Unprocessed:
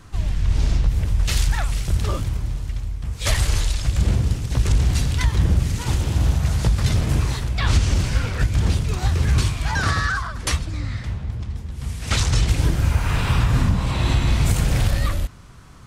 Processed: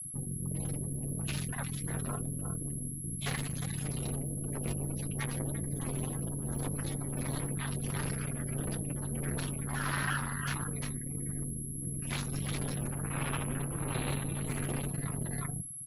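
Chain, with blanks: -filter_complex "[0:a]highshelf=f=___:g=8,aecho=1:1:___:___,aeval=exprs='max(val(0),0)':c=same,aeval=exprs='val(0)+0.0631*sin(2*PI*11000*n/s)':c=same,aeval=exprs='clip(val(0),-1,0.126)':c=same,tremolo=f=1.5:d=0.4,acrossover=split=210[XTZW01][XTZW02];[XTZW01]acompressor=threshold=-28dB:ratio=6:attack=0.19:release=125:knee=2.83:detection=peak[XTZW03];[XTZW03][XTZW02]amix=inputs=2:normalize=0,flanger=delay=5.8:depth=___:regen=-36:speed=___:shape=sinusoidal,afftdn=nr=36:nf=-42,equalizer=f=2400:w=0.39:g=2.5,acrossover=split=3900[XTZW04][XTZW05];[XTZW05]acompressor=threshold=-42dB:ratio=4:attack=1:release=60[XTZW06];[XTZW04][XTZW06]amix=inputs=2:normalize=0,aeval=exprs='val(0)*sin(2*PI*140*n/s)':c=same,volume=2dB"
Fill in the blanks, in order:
11000, 351, 0.596, 2.8, 1.6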